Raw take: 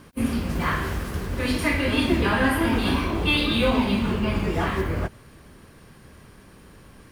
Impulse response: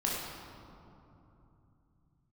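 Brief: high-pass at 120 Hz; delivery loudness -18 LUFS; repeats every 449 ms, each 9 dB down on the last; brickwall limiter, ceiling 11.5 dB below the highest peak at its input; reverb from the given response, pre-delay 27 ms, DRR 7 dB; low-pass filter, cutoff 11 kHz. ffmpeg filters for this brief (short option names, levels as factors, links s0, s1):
-filter_complex "[0:a]highpass=120,lowpass=11000,alimiter=limit=0.106:level=0:latency=1,aecho=1:1:449|898|1347|1796:0.355|0.124|0.0435|0.0152,asplit=2[s0][s1];[1:a]atrim=start_sample=2205,adelay=27[s2];[s1][s2]afir=irnorm=-1:irlink=0,volume=0.2[s3];[s0][s3]amix=inputs=2:normalize=0,volume=2.82"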